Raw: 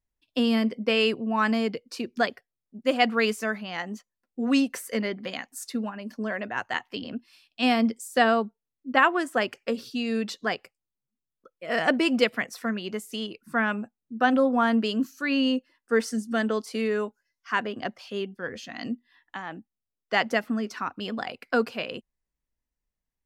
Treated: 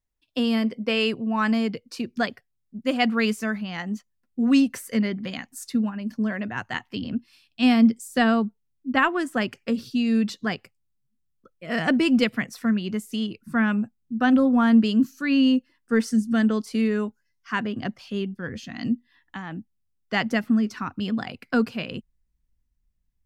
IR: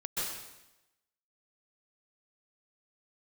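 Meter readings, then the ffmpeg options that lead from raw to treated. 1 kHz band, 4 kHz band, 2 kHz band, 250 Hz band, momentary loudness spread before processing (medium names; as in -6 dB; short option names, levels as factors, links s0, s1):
-2.0 dB, 0.0 dB, -0.5 dB, +6.0 dB, 13 LU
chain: -af "asubboost=boost=5.5:cutoff=210"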